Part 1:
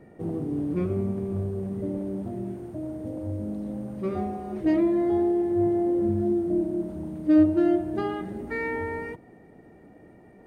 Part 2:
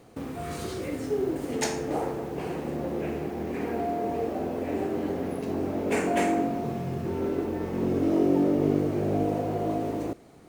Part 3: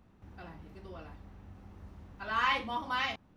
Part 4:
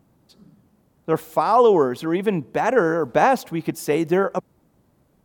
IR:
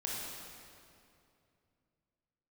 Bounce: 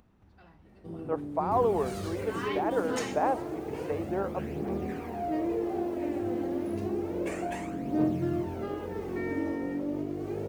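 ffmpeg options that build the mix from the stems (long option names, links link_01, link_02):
-filter_complex "[0:a]adelay=650,volume=-10dB[link_01];[1:a]acrossover=split=120[link_02][link_03];[link_03]acompressor=threshold=-27dB:ratio=6[link_04];[link_02][link_04]amix=inputs=2:normalize=0,aphaser=in_gain=1:out_gain=1:delay=4:decay=0.51:speed=0.3:type=triangular,adelay=1350,volume=-5.5dB[link_05];[2:a]acompressor=mode=upward:threshold=-48dB:ratio=2.5,volume=-8.5dB[link_06];[3:a]dynaudnorm=framelen=460:gausssize=3:maxgain=11.5dB,bandpass=frequency=680:width_type=q:width=0.98:csg=0,volume=-13dB[link_07];[link_01][link_05][link_06][link_07]amix=inputs=4:normalize=0"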